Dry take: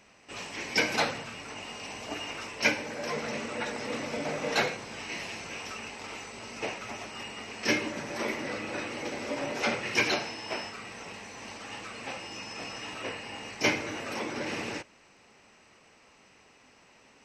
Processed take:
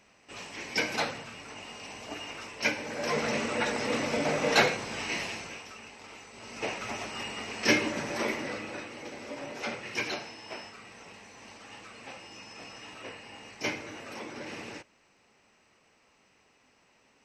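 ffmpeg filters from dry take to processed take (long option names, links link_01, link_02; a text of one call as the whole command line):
ffmpeg -i in.wav -af "volume=14.5dB,afade=type=in:start_time=2.73:duration=0.47:silence=0.421697,afade=type=out:start_time=5.13:duration=0.52:silence=0.266073,afade=type=in:start_time=6.3:duration=0.55:silence=0.316228,afade=type=out:start_time=8.04:duration=0.84:silence=0.334965" out.wav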